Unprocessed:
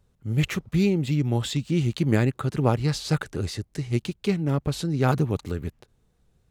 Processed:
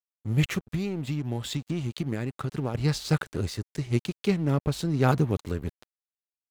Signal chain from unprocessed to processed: 0.62–2.75 compressor 16:1, threshold -25 dBFS, peak gain reduction 11 dB; crossover distortion -44 dBFS

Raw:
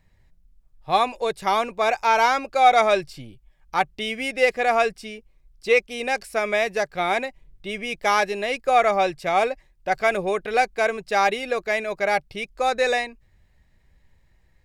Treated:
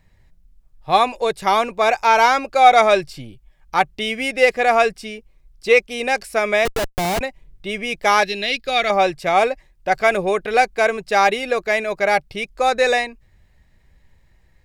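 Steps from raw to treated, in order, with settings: 6.65–7.21 Schmitt trigger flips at -24.5 dBFS; 8.23–8.9 graphic EQ 500/1000/4000/8000 Hz -5/-12/+12/-8 dB; gain +4.5 dB

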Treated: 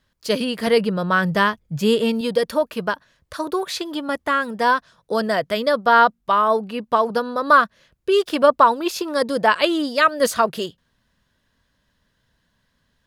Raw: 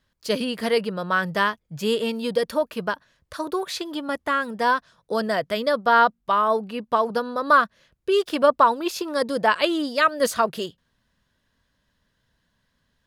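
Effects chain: 0.67–2.21 low shelf 210 Hz +9.5 dB; gain +3 dB

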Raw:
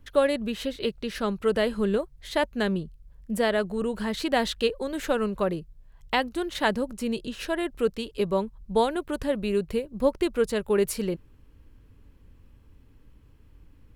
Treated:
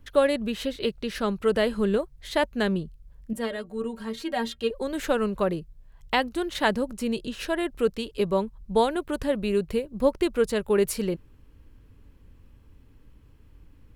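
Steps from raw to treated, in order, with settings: 3.33–4.71 metallic resonator 68 Hz, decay 0.24 s, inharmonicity 0.03; gain +1 dB

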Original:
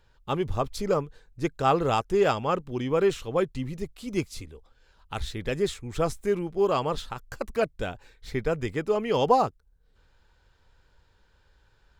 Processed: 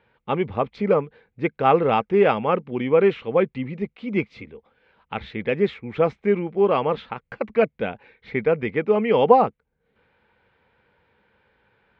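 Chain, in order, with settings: speaker cabinet 130–3100 Hz, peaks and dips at 210 Hz +8 dB, 480 Hz +6 dB, 820 Hz +3 dB, 2200 Hz +9 dB; gain +2.5 dB

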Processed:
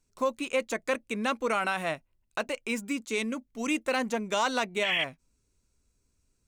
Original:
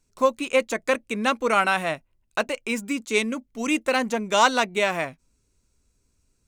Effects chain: painted sound noise, 4.83–5.04, 1700–3400 Hz -19 dBFS; limiter -13 dBFS, peak gain reduction 8 dB; gain -4.5 dB

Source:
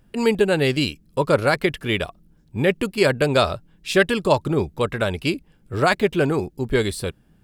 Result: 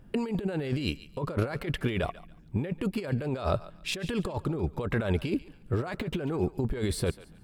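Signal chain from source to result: negative-ratio compressor -27 dBFS, ratio -1; high shelf 2200 Hz -9 dB; on a send: thinning echo 0.142 s, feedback 29%, high-pass 790 Hz, level -15.5 dB; on the sum: gain -2.5 dB

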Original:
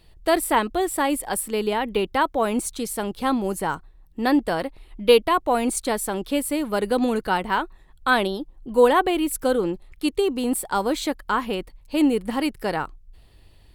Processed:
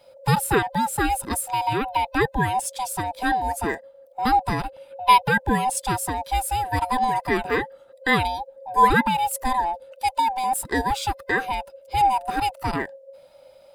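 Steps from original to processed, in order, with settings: band-swap scrambler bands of 500 Hz

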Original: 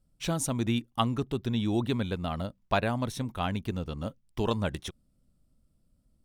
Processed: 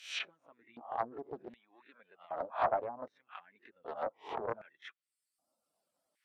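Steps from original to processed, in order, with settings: spectral swells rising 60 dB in 0.50 s; flange 0.54 Hz, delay 3.2 ms, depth 5.9 ms, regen -45%; treble ducked by the level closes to 400 Hz, closed at -31 dBFS; harmonic-percussive split percussive +6 dB; LFO high-pass square 0.65 Hz 720–2000 Hz; reverb removal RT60 1 s; Doppler distortion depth 0.36 ms; gain +1 dB

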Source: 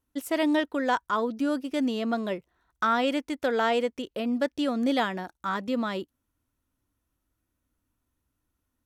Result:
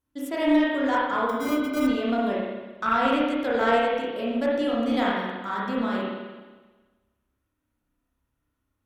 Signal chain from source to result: 1.29–1.87 sample-rate reducer 1800 Hz, jitter 0%; spring tank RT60 1.3 s, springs 30/53 ms, chirp 70 ms, DRR -6 dB; added harmonics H 2 -14 dB, 8 -43 dB, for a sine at -5 dBFS; gain -4.5 dB

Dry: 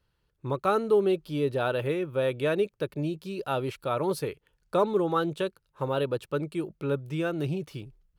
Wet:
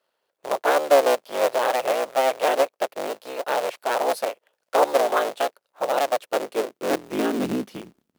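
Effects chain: cycle switcher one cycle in 3, inverted; short-mantissa float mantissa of 2-bit; high-pass sweep 570 Hz -> 230 Hz, 6.13–7.57; gain +2 dB

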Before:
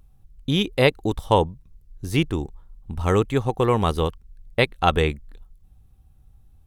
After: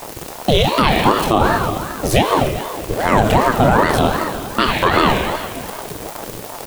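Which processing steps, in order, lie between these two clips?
zero-crossing step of -30 dBFS; HPF 110 Hz 12 dB/oct; gate with hold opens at -33 dBFS; requantised 8-bit, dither triangular; doubler 28 ms -12.5 dB; on a send at -6 dB: reverb RT60 2.0 s, pre-delay 5 ms; on the sum: maximiser +13 dB; ring modulator with a swept carrier 510 Hz, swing 60%, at 2.6 Hz

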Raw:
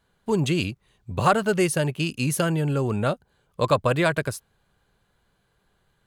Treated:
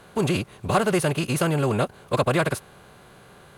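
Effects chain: per-bin compression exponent 0.6; time stretch by phase-locked vocoder 0.59×; gain -1.5 dB

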